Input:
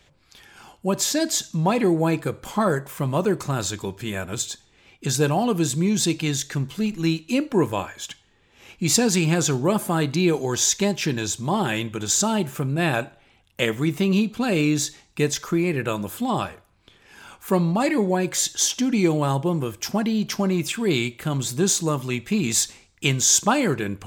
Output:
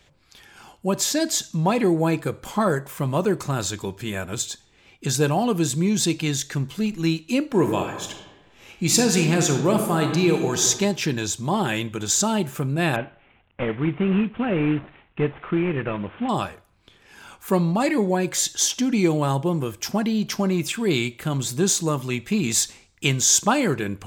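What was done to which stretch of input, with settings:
0:07.45–0:10.66: thrown reverb, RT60 1.2 s, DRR 4.5 dB
0:12.96–0:16.29: variable-slope delta modulation 16 kbit/s

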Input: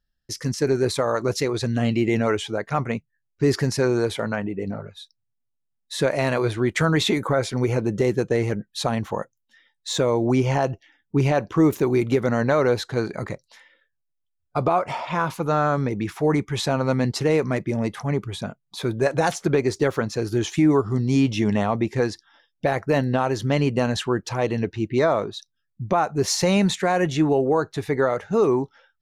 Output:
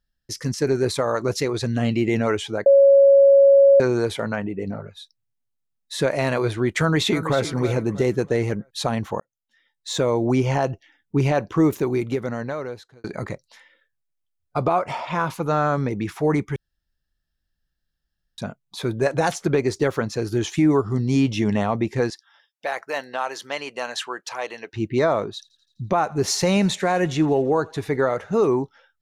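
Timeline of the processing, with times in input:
0:02.66–0:03.80: beep over 554 Hz −9 dBFS
0:06.80–0:07.42: delay throw 320 ms, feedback 35%, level −11.5 dB
0:09.20–0:10.03: fade in linear
0:11.57–0:13.04: fade out
0:16.56–0:18.38: fill with room tone
0:22.10–0:24.73: high-pass filter 770 Hz
0:25.33–0:28.48: feedback echo with a high-pass in the loop 84 ms, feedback 69%, high-pass 500 Hz, level −23 dB

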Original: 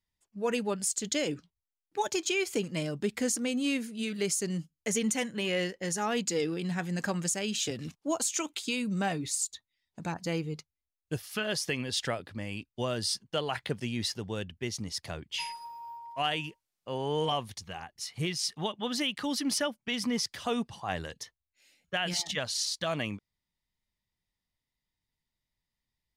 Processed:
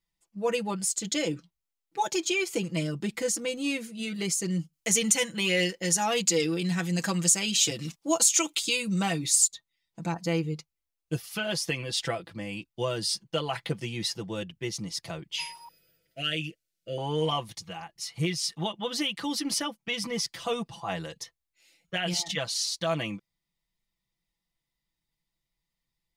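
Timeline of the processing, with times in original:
0:04.73–0:09.48: high-shelf EQ 2,100 Hz +8 dB
0:15.68–0:16.98: elliptic band-stop filter 640–1,400 Hz
whole clip: parametric band 1,600 Hz −2.5 dB 0.3 octaves; notch filter 1,700 Hz, Q 28; comb filter 6 ms, depth 77%

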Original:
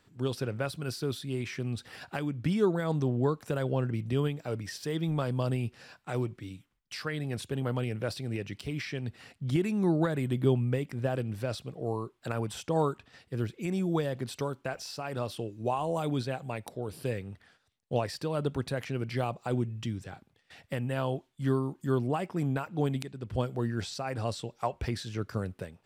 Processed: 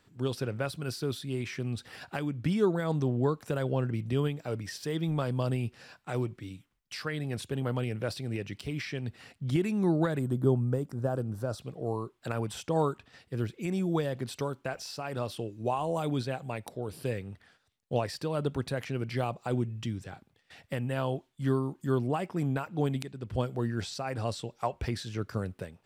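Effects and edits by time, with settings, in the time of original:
0:10.19–0:11.59: drawn EQ curve 1,400 Hz 0 dB, 2,200 Hz −19 dB, 6,200 Hz −1 dB

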